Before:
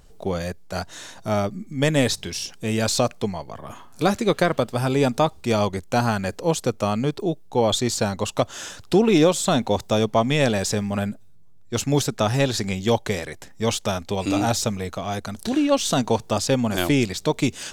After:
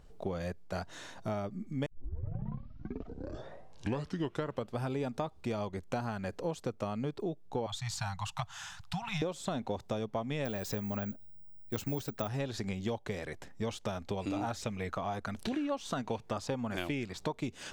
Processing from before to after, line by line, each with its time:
0:01.86: tape start 2.94 s
0:07.66–0:09.22: elliptic band-stop filter 160–800 Hz
0:10.45–0:12.28: bad sample-rate conversion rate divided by 2×, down none, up zero stuff
0:14.37–0:17.38: auto-filter bell 1.4 Hz 880–2,700 Hz +8 dB
whole clip: high-shelf EQ 4,200 Hz −11 dB; downward compressor, threshold −27 dBFS; level −5 dB

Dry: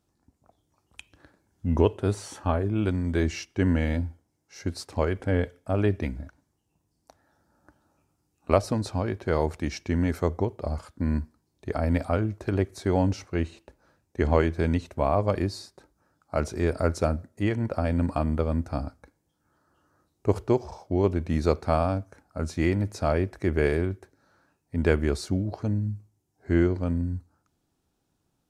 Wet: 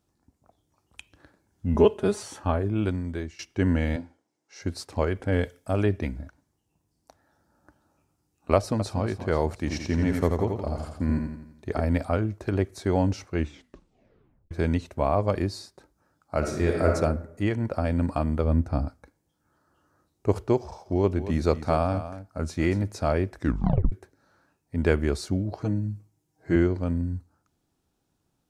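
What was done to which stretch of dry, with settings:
0:01.74–0:02.23: comb filter 4.8 ms, depth 89%
0:02.83–0:03.39: fade out, to −21.5 dB
0:03.96–0:04.62: band-pass filter 280–7,500 Hz
0:05.32–0:05.84: high-shelf EQ 3,600 Hz +9.5 dB
0:08.55–0:09.02: delay throw 240 ms, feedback 55%, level −12 dB
0:09.58–0:11.84: repeating echo 85 ms, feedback 48%, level −4.5 dB
0:13.37: tape stop 1.14 s
0:16.38–0:16.94: thrown reverb, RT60 0.85 s, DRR 0 dB
0:18.44–0:18.87: spectral tilt −1.5 dB per octave
0:20.62–0:22.83: single-tap delay 236 ms −12.5 dB
0:23.37: tape stop 0.55 s
0:25.60–0:26.56: comb filter 6.3 ms, depth 75%

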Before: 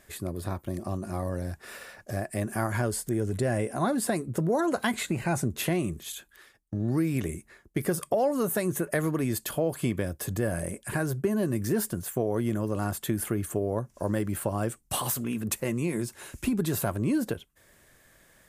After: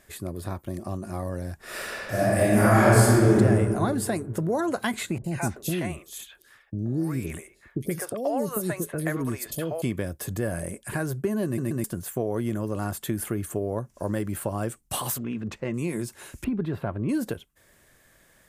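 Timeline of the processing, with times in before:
0:01.56–0:03.36: thrown reverb, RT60 2.2 s, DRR −11.5 dB
0:05.18–0:09.82: three-band delay without the direct sound lows, highs, mids 60/130 ms, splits 510/3,600 Hz
0:11.45: stutter in place 0.13 s, 3 plays
0:15.18–0:15.74: high-frequency loss of the air 180 metres
0:16.44–0:17.09: high-frequency loss of the air 420 metres

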